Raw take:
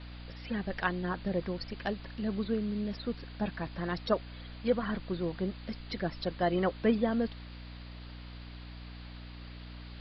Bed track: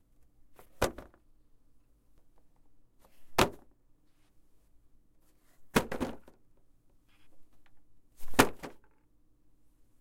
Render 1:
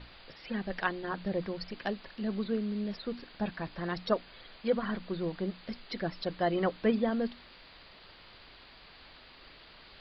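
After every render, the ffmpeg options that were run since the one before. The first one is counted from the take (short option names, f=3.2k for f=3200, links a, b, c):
-af "bandreject=f=60:t=h:w=6,bandreject=f=120:t=h:w=6,bandreject=f=180:t=h:w=6,bandreject=f=240:t=h:w=6,bandreject=f=300:t=h:w=6"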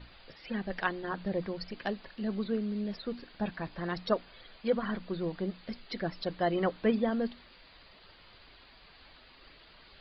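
-af "afftdn=nr=6:nf=-55"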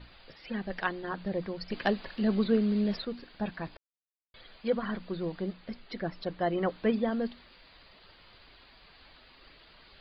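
-filter_complex "[0:a]asettb=1/sr,asplit=3[a][b][c];[a]atrim=end=1.704[d];[b]atrim=start=1.7:end=3.05,asetpts=PTS-STARTPTS,afade=t=in:d=0.004:c=qsin,afade=t=out:st=1.346:d=0.004:c=qsin,acontrast=66[e];[c]atrim=start=3.046[f];[d][e]acrossfade=d=0.004:c1=hsin:c2=qsin[g];[g][f]acrossfade=d=0.004:c1=qsin:c2=hsin,asettb=1/sr,asplit=3[h][i][j];[h]atrim=end=5.534[k];[i]atrim=start=5.53:end=6.69,asetpts=PTS-STARTPTS,afade=t=in:d=0.004:c=qsin,afade=t=out:st=1.156:d=0.004:c=qsin,lowpass=f=3.1k:p=1[l];[j]atrim=start=6.686[m];[k][l]acrossfade=d=0.004:c1=hsin:c2=qsin[n];[n][m]acrossfade=d=0.004:c1=qsin:c2=hsin,asplit=3[o][p][q];[o]atrim=end=3.77,asetpts=PTS-STARTPTS,afade=t=out:st=3.766:d=0.004:c=hsin[r];[p]atrim=start=3.77:end=4.34,asetpts=PTS-STARTPTS,volume=0[s];[q]atrim=start=4.34,asetpts=PTS-STARTPTS,afade=t=in:d=0.004:c=hsin[t];[r][s][t]concat=n=3:v=0:a=1"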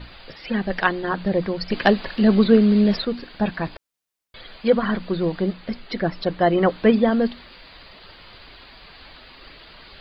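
-af "volume=11.5dB"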